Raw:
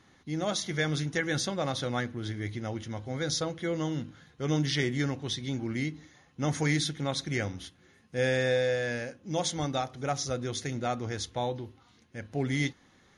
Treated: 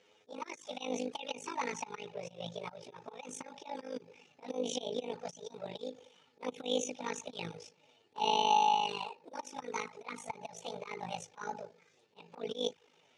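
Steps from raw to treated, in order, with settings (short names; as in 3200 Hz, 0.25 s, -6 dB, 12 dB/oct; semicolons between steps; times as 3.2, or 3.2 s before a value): delay-line pitch shifter +9 st; AM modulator 52 Hz, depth 75%; envelope flanger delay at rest 10.3 ms, full sweep at -29.5 dBFS; auto swell 0.15 s; speaker cabinet 140–7200 Hz, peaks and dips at 210 Hz -6 dB, 320 Hz -5 dB, 470 Hz +8 dB, 870 Hz +8 dB, 2400 Hz +7 dB, 3900 Hz +4 dB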